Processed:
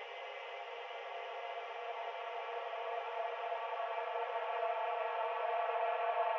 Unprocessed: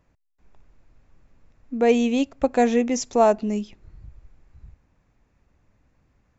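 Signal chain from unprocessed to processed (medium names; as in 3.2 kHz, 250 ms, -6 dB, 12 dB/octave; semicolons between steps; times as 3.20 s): Chebyshev band-pass 450–3100 Hz, order 4; thinning echo 637 ms, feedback 58%, high-pass 580 Hz, level -7.5 dB; Paulstretch 48×, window 0.50 s, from 5.57 s; trim +15 dB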